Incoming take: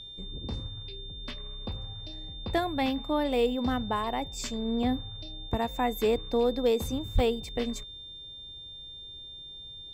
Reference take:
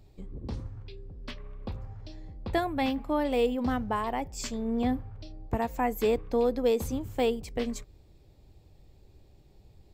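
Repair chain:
clipped peaks rebuilt −16.5 dBFS
notch filter 3,600 Hz, Q 30
0:07.14–0:07.26: high-pass filter 140 Hz 24 dB per octave

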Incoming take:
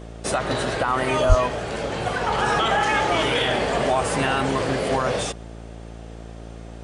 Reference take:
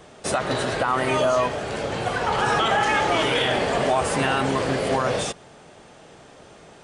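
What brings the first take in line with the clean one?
hum removal 56.4 Hz, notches 13
high-pass at the plosives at 0:01.28

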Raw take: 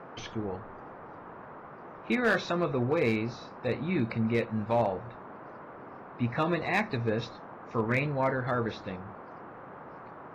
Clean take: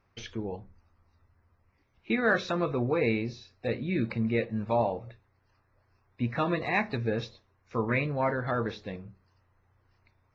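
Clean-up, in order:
clipped peaks rebuilt −19 dBFS
noise reduction from a noise print 23 dB

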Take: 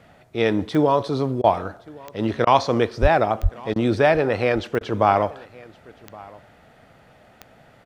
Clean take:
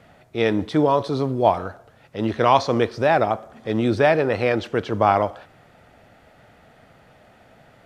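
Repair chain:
click removal
0:03.01–0:03.13: high-pass filter 140 Hz 24 dB per octave
0:03.42–0:03.54: high-pass filter 140 Hz 24 dB per octave
repair the gap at 0:01.42/0:02.45/0:03.74/0:04.79, 18 ms
echo removal 1,119 ms −23 dB

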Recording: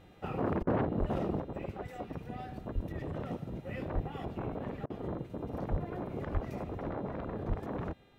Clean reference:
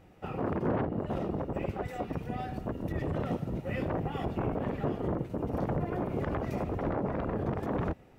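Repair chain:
hum removal 402.6 Hz, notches 10
high-pass at the plosives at 0:00.60/0:00.99/0:02.74/0:03.94/0:05.70/0:06.33/0:07.48
repair the gap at 0:00.63/0:04.86, 39 ms
level correction +6 dB, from 0:01.40

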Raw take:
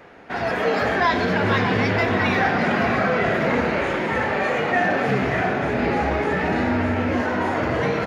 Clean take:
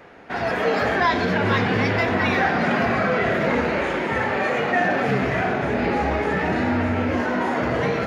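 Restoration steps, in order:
echo removal 598 ms −10.5 dB

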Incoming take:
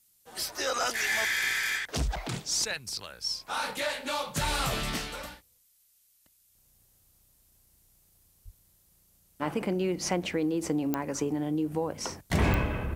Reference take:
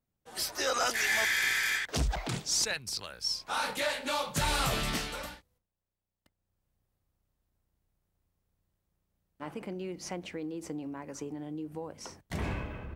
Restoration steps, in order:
click removal
high-pass at the plosives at 0:08.44
downward expander −58 dBFS, range −21 dB
level correction −9.5 dB, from 0:06.55

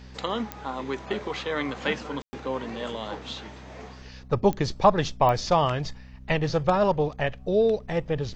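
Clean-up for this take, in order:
click removal
hum removal 63.8 Hz, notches 4
ambience match 0:02.22–0:02.33

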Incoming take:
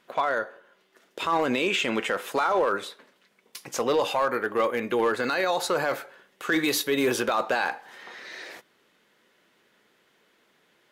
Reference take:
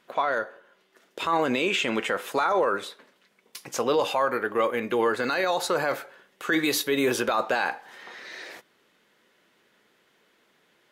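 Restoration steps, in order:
clipped peaks rebuilt −16.5 dBFS

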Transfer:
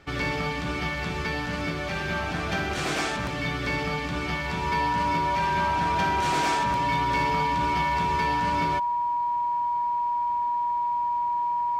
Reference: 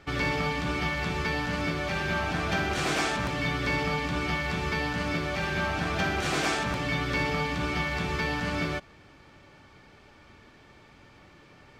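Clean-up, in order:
clipped peaks rebuilt −18 dBFS
notch filter 960 Hz, Q 30

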